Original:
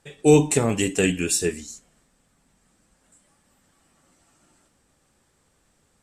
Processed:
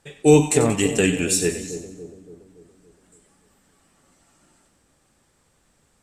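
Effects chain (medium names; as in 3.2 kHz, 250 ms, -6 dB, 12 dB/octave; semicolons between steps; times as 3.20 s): two-band feedback delay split 760 Hz, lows 284 ms, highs 92 ms, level -10.5 dB; trim +1.5 dB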